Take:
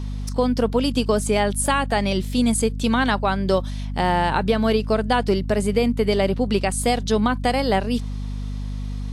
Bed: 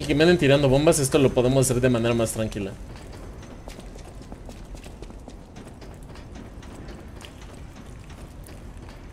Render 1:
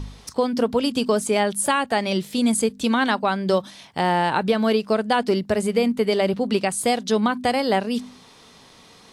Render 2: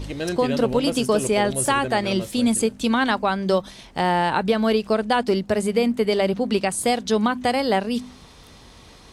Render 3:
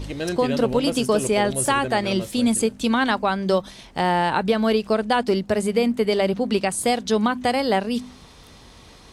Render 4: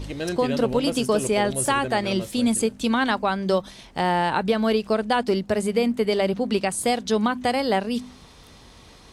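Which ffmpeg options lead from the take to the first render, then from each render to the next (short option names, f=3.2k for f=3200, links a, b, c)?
-af "bandreject=f=50:t=h:w=4,bandreject=f=100:t=h:w=4,bandreject=f=150:t=h:w=4,bandreject=f=200:t=h:w=4,bandreject=f=250:t=h:w=4"
-filter_complex "[1:a]volume=-10dB[a];[0:a][a]amix=inputs=2:normalize=0"
-af anull
-af "volume=-1.5dB"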